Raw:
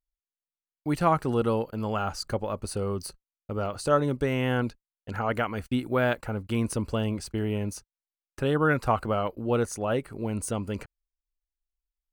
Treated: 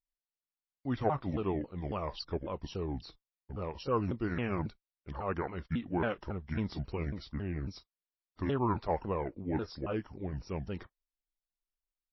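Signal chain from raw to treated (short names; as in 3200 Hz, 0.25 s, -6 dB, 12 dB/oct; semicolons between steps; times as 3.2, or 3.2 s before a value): repeated pitch sweeps -8.5 st, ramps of 0.274 s; gain -6 dB; MP3 24 kbps 16000 Hz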